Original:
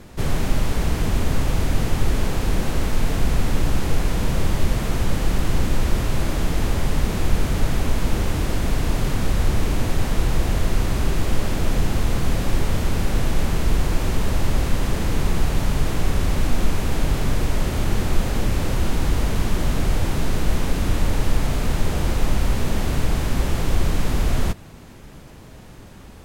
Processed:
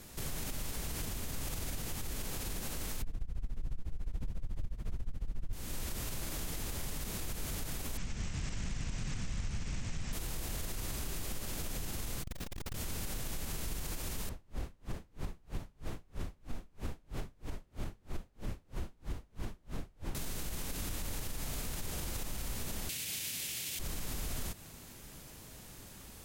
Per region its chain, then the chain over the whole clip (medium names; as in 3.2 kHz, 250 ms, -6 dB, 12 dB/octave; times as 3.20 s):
3.02–5.53 s: RIAA curve playback + tremolo 14 Hz, depth 91%
7.97–10.13 s: rippled Chebyshev low-pass 7.8 kHz, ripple 6 dB + resonant low shelf 250 Hz +7.5 dB, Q 1.5 + loudspeaker Doppler distortion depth 0.53 ms
12.23–12.75 s: median filter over 5 samples + transformer saturation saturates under 140 Hz
14.29–20.15 s: low-pass 1.1 kHz 6 dB/octave + logarithmic tremolo 3.1 Hz, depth 37 dB
22.89–23.79 s: high-pass 92 Hz 24 dB/octave + resonant high shelf 1.7 kHz +12.5 dB, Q 1.5
whole clip: pre-emphasis filter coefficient 0.8; compression, threshold -33 dBFS; peak limiter -30.5 dBFS; trim +2.5 dB